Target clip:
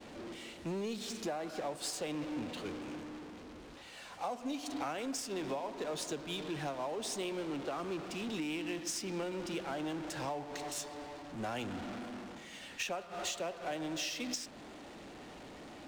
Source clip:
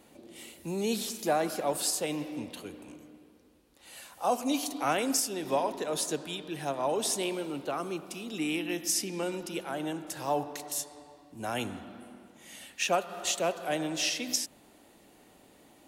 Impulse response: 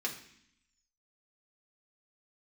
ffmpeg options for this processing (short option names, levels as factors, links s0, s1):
-af "aeval=exprs='val(0)+0.5*0.0211*sgn(val(0))':c=same,adynamicsmooth=sensitivity=8:basefreq=3700,equalizer=f=11000:w=4.5:g=-7,acompressor=threshold=0.0251:ratio=16,agate=range=0.0224:threshold=0.0178:ratio=3:detection=peak,volume=0.75"